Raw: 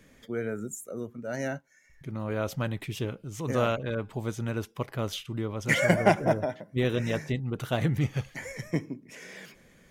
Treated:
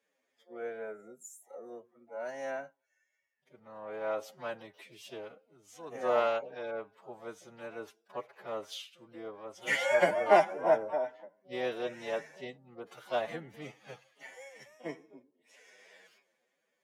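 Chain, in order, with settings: tilt +4.5 dB/oct; harmoniser +7 st -10 dB; band-pass 580 Hz, Q 1.2; time stretch by phase-locked vocoder 1.7×; three-band expander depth 40%

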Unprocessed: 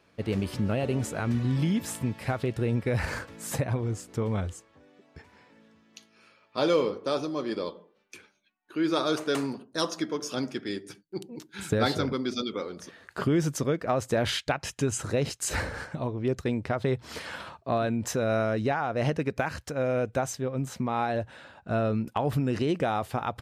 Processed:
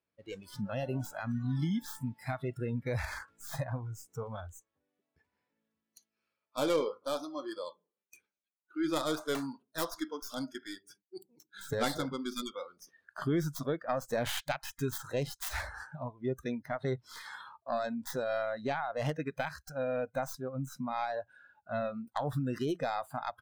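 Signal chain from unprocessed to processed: tracing distortion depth 0.26 ms; spectral noise reduction 21 dB; gain -5.5 dB

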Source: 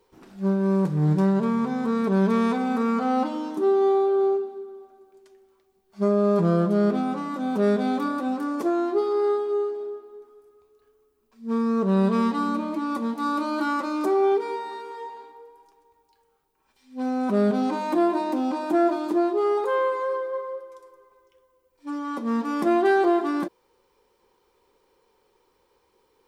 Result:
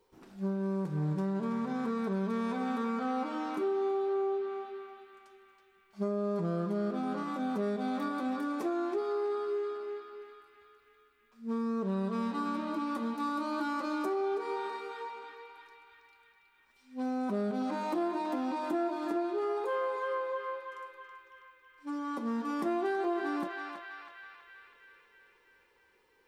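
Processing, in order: on a send: narrowing echo 0.325 s, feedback 72%, band-pass 2300 Hz, level -4 dB; on the sum: compressor 3:1, threshold -25 dBFS, peak gain reduction 7.5 dB; gain -5.5 dB

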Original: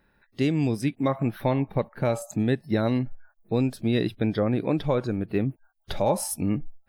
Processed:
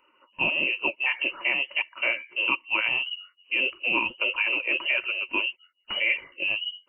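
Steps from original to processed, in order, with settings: inverted band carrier 2900 Hz; flange 1.6 Hz, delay 0.1 ms, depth 9.9 ms, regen +33%; small resonant body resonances 350/540/940 Hz, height 17 dB, ringing for 30 ms

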